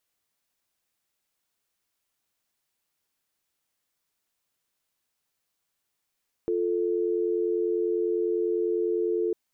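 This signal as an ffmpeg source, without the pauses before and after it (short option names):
-f lavfi -i "aevalsrc='0.0501*(sin(2*PI*350*t)+sin(2*PI*440*t))':d=2.85:s=44100"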